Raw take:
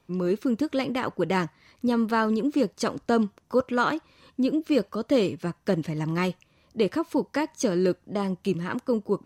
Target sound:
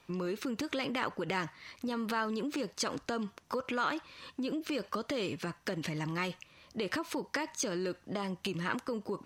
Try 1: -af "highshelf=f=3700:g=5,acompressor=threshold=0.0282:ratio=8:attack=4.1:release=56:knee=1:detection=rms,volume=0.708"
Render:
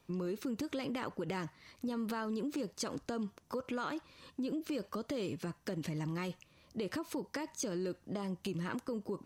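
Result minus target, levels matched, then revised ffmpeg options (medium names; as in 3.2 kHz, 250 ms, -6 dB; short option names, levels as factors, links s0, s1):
2 kHz band -5.0 dB
-af "highshelf=f=3700:g=5,acompressor=threshold=0.0282:ratio=8:attack=4.1:release=56:knee=1:detection=rms,equalizer=f=2100:w=0.33:g=9,volume=0.708"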